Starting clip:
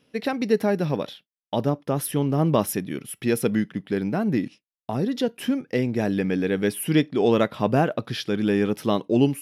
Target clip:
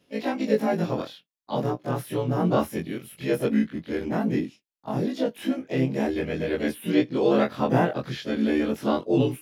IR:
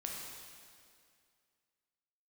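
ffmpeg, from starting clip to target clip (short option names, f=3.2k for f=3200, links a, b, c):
-filter_complex "[0:a]afftfilt=real='re':imag='-im':win_size=2048:overlap=0.75,acrossover=split=2900[a][b];[b]acompressor=threshold=-45dB:ratio=4:attack=1:release=60[c];[a][c]amix=inputs=2:normalize=0,asplit=2[d][e];[e]asetrate=55563,aresample=44100,atempo=0.793701,volume=-7dB[f];[d][f]amix=inputs=2:normalize=0,volume=2dB"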